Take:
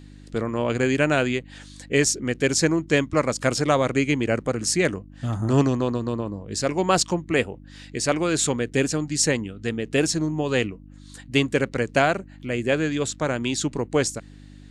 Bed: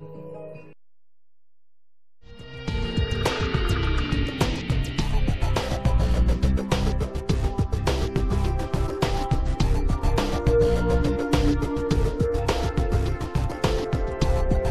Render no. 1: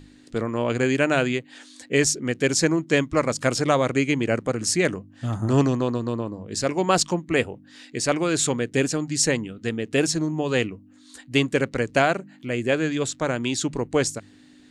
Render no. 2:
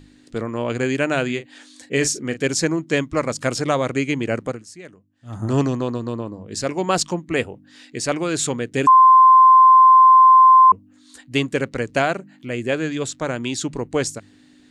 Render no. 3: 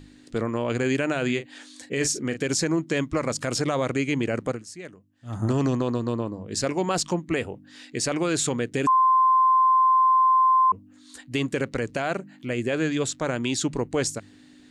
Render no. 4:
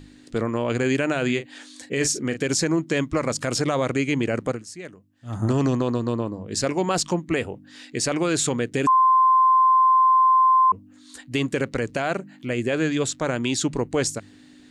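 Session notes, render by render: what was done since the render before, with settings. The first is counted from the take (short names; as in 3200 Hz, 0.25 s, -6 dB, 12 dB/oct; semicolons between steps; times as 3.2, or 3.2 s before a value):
de-hum 50 Hz, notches 4
1.25–2.47 doubler 37 ms -11 dB; 4.47–5.41 dip -18.5 dB, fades 0.16 s; 8.87–10.72 bleep 1040 Hz -6.5 dBFS
limiter -15 dBFS, peak gain reduction 11 dB
gain +2 dB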